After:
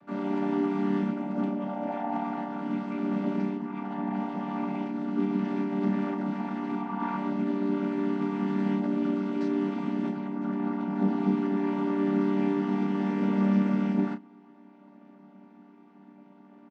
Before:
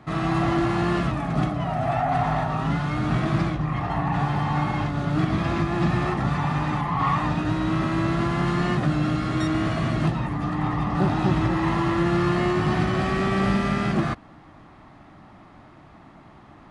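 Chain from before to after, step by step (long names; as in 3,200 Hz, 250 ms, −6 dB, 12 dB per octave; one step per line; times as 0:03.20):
channel vocoder with a chord as carrier minor triad, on G3
double-tracking delay 31 ms −9 dB
level −5.5 dB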